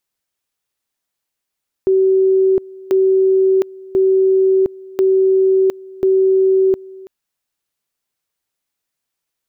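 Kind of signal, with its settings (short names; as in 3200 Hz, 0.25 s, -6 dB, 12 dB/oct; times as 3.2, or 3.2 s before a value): two-level tone 381 Hz -9.5 dBFS, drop 22.5 dB, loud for 0.71 s, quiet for 0.33 s, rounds 5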